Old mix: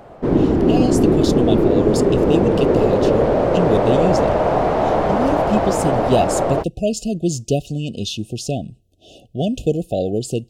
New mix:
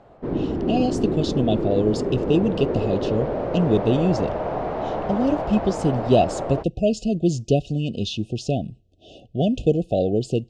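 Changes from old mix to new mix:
background −9.0 dB
master: add high-frequency loss of the air 120 metres

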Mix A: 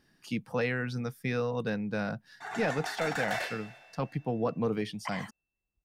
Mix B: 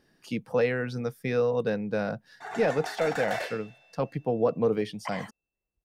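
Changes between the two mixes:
background: send −10.5 dB
master: add parametric band 500 Hz +7.5 dB 1.1 octaves

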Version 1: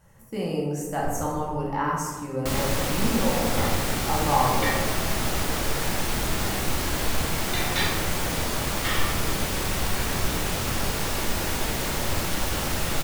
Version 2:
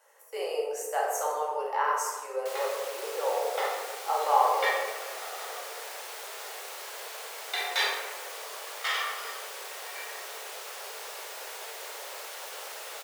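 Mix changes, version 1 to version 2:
second sound −11.0 dB
master: add Butterworth high-pass 410 Hz 72 dB per octave

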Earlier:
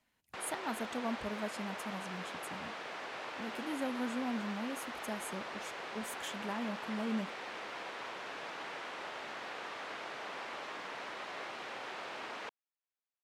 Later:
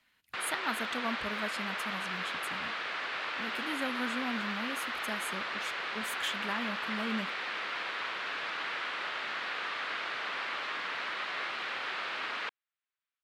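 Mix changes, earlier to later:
speech: add high-shelf EQ 11,000 Hz +7 dB
master: add flat-topped bell 2,300 Hz +9.5 dB 2.3 octaves

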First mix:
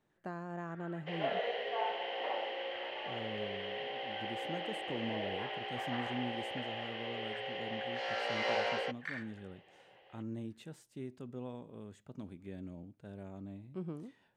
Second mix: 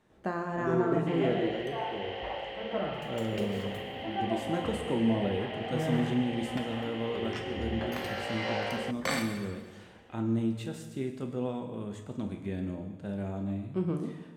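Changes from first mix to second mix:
speech +6.5 dB
first sound: remove four-pole ladder band-pass 1,800 Hz, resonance 75%
reverb: on, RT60 1.4 s

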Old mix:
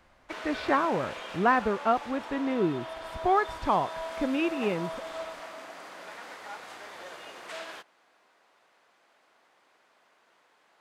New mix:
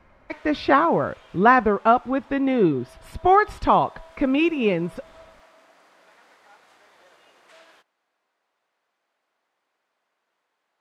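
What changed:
speech +8.0 dB
background −11.5 dB

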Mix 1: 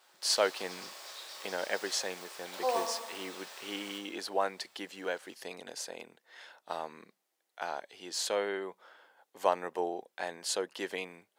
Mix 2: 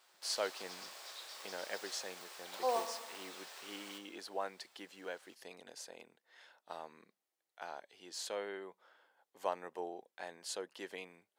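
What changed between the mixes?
speech −9.0 dB
background: send −7.0 dB

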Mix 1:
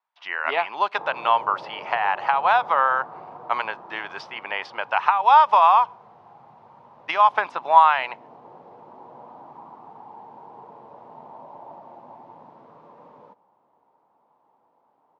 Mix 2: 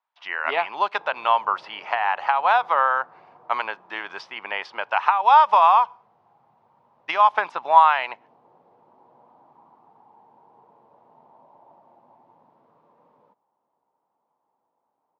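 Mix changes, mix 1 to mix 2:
background −10.5 dB
reverb: off

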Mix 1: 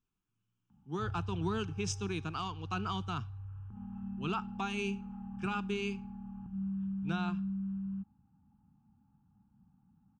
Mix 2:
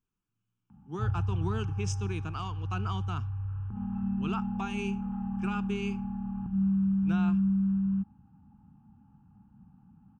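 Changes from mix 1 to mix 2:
background +10.0 dB
master: add parametric band 4,000 Hz −8.5 dB 0.43 octaves

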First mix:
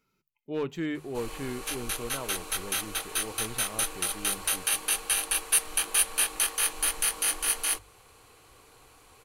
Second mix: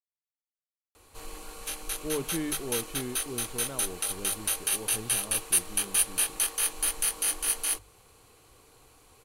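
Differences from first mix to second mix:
speech: entry +1.55 s
master: add parametric band 1,600 Hz −5 dB 2.5 octaves

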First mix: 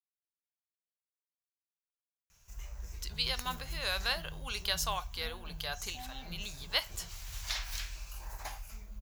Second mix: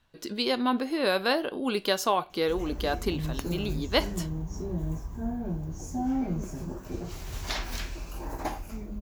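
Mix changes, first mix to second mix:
speech: entry −2.80 s
master: remove guitar amp tone stack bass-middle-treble 10-0-10

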